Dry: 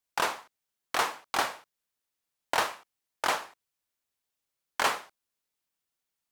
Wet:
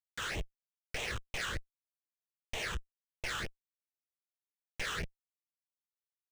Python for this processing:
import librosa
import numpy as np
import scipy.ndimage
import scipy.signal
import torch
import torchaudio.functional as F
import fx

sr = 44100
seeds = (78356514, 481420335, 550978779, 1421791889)

y = fx.schmitt(x, sr, flips_db=-42.0)
y = fx.phaser_stages(y, sr, stages=8, low_hz=620.0, high_hz=1500.0, hz=3.2, feedback_pct=25)
y = fx.graphic_eq(y, sr, hz=(250, 500, 1000, 2000), db=(-10, 4, -9, 6))
y = np.interp(np.arange(len(y)), np.arange(len(y))[::3], y[::3])
y = y * 10.0 ** (2.5 / 20.0)